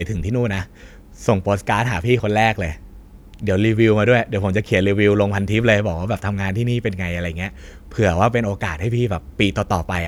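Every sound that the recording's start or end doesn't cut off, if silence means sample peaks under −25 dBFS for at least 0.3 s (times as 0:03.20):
0:01.24–0:02.73
0:03.34–0:07.48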